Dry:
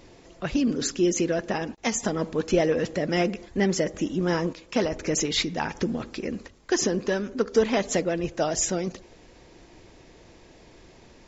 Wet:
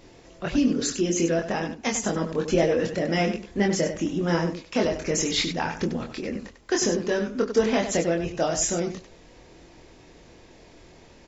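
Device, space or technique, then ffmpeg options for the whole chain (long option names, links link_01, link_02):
slapback doubling: -filter_complex "[0:a]asplit=3[link_01][link_02][link_03];[link_02]adelay=24,volume=-3.5dB[link_04];[link_03]adelay=97,volume=-8.5dB[link_05];[link_01][link_04][link_05]amix=inputs=3:normalize=0,volume=-1dB"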